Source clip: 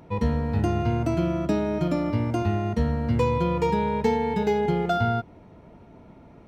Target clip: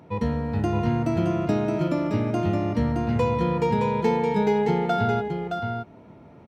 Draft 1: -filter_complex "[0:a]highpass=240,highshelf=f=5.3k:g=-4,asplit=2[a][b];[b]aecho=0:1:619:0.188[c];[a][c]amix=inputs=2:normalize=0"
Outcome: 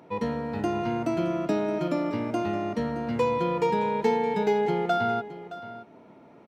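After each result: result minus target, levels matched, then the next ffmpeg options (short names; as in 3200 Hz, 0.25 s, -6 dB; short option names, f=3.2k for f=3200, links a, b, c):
125 Hz band -8.0 dB; echo-to-direct -9.5 dB
-filter_complex "[0:a]highpass=86,highshelf=f=5.3k:g=-4,asplit=2[a][b];[b]aecho=0:1:619:0.188[c];[a][c]amix=inputs=2:normalize=0"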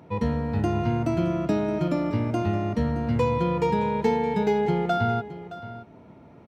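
echo-to-direct -9.5 dB
-filter_complex "[0:a]highpass=86,highshelf=f=5.3k:g=-4,asplit=2[a][b];[b]aecho=0:1:619:0.562[c];[a][c]amix=inputs=2:normalize=0"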